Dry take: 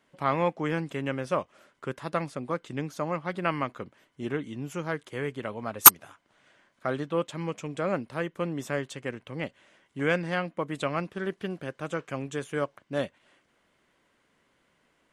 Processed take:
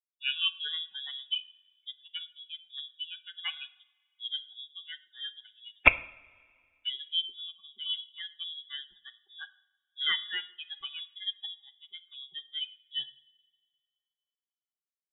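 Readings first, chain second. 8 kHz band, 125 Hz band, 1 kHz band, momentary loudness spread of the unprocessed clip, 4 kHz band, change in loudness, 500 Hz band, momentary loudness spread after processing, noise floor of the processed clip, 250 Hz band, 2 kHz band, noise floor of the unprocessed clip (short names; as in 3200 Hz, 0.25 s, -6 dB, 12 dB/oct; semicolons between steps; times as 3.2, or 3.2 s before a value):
under -40 dB, -20.0 dB, -13.5 dB, 10 LU, +8.5 dB, -5.5 dB, -19.5 dB, 18 LU, under -85 dBFS, -23.0 dB, +1.0 dB, -70 dBFS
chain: per-bin expansion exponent 3; low shelf 250 Hz -6 dB; inverted band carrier 3600 Hz; two-slope reverb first 0.58 s, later 2.1 s, from -18 dB, DRR 13 dB; gain +2.5 dB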